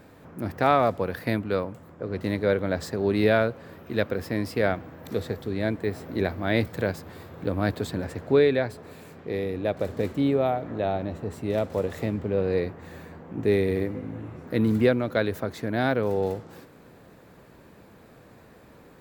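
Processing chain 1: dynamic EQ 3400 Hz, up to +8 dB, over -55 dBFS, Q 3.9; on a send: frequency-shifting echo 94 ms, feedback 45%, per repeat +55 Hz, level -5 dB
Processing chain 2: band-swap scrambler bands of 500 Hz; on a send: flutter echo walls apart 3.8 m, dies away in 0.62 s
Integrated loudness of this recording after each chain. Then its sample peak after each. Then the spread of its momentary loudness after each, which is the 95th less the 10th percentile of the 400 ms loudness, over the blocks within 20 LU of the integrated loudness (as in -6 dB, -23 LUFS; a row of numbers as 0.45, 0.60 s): -25.0, -22.5 LUFS; -5.0, -4.5 dBFS; 13, 13 LU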